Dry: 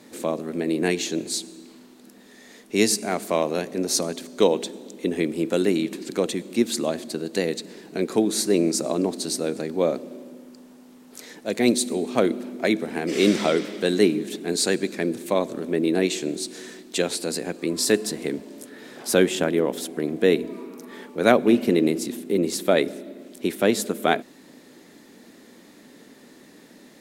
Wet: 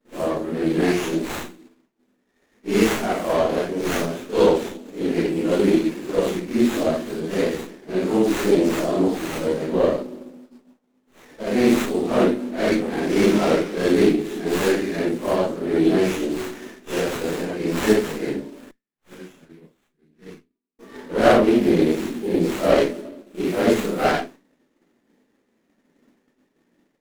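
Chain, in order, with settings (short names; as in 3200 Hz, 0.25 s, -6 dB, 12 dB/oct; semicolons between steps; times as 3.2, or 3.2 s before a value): phase scrambler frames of 0.2 s; 18.71–20.79 passive tone stack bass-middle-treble 6-0-2; expander -36 dBFS; running maximum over 9 samples; gain +3.5 dB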